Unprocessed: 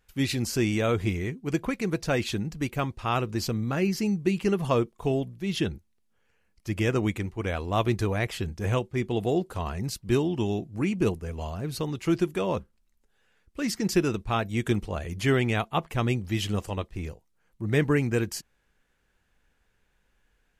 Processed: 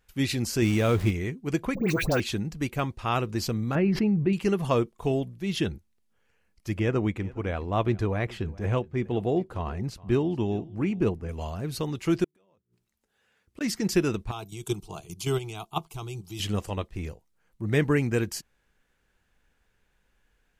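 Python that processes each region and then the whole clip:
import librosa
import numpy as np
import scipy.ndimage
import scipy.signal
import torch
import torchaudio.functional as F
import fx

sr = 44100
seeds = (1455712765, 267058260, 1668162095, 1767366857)

y = fx.chain(x, sr, fx.low_shelf(hz=210.0, db=5.5),
    fx.sample_gate(floor_db=-35.0), at=(0.62, 1.11))
y = fx.chain(y, sr, fx.dispersion(late='highs', ms=92.0, hz=1500.0),
    fx.resample_bad(factor=2, down='none', up='hold'),
    fx.env_flatten(amount_pct=70), at=(1.75, 2.2))
y = fx.chain(y, sr, fx.air_absorb(metres=480.0),
    fx.env_flatten(amount_pct=70), at=(3.75, 4.33))
y = fx.chain(y, sr, fx.lowpass(hz=1900.0, slope=6),
    fx.echo_single(ms=415, db=-21.5), at=(6.77, 11.29))
y = fx.chain(y, sr, fx.highpass(hz=74.0, slope=12),
    fx.hum_notches(base_hz=60, count=7),
    fx.gate_flip(shuts_db=-30.0, range_db=-39), at=(12.24, 13.61))
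y = fx.chain(y, sr, fx.high_shelf(hz=2800.0, db=10.0),
    fx.level_steps(step_db=11),
    fx.fixed_phaser(hz=360.0, stages=8), at=(14.31, 16.4))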